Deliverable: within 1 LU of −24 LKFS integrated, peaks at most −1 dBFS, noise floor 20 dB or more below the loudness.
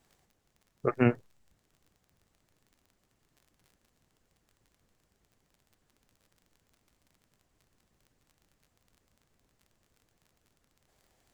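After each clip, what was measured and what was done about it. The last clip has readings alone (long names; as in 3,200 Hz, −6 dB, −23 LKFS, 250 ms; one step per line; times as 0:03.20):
crackle rate 32 per second; integrated loudness −29.0 LKFS; sample peak −10.5 dBFS; target loudness −24.0 LKFS
→ click removal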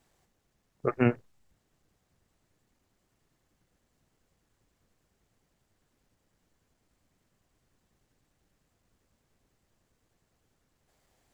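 crackle rate 0 per second; integrated loudness −29.0 LKFS; sample peak −10.5 dBFS; target loudness −24.0 LKFS
→ level +5 dB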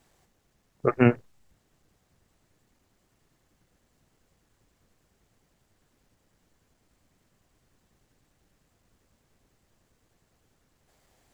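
integrated loudness −24.5 LKFS; sample peak −5.5 dBFS; background noise floor −71 dBFS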